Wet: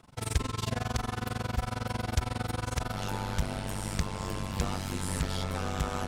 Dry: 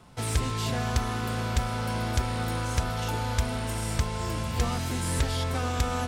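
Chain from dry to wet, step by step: AM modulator 22 Hz, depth 95%, from 2.92 s modulator 97 Hz

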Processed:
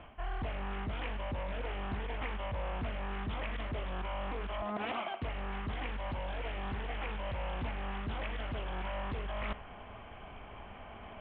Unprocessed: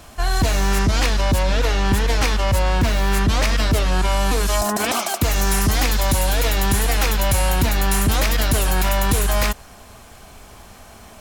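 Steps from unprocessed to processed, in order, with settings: reverse; compression 8:1, threshold -28 dBFS, peak gain reduction 14.5 dB; reverse; rippled Chebyshev low-pass 3.2 kHz, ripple 3 dB; flutter echo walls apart 9 m, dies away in 0.21 s; loudspeaker Doppler distortion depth 0.44 ms; trim -3.5 dB

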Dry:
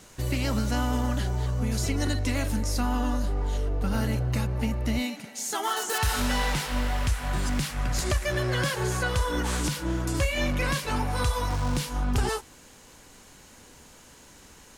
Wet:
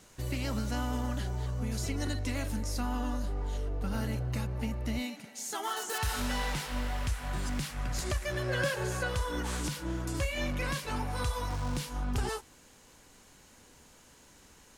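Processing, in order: 8.46–9.14 s: small resonant body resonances 560/1600/2600 Hz, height 11 dB -> 8 dB; trim -6.5 dB

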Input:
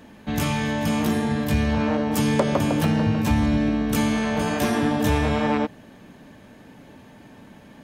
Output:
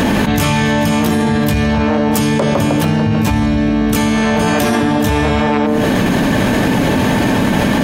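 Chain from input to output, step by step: de-hum 74.87 Hz, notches 32; level flattener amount 100%; trim +3.5 dB

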